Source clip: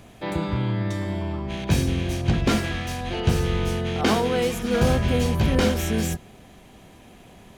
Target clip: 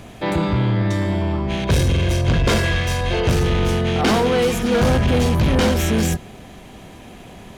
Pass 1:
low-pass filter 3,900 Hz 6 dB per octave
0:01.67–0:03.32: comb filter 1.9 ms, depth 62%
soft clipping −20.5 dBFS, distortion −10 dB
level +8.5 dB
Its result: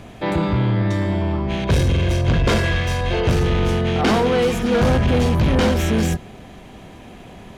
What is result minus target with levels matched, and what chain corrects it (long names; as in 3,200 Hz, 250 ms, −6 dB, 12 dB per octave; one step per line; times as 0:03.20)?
8,000 Hz band −4.0 dB
low-pass filter 10,000 Hz 6 dB per octave
0:01.67–0:03.32: comb filter 1.9 ms, depth 62%
soft clipping −20.5 dBFS, distortion −10 dB
level +8.5 dB